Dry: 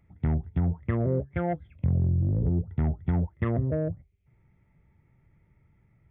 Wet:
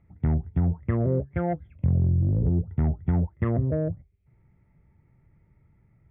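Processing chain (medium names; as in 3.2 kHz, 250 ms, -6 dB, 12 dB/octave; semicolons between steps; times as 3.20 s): distance through air 430 m; trim +2.5 dB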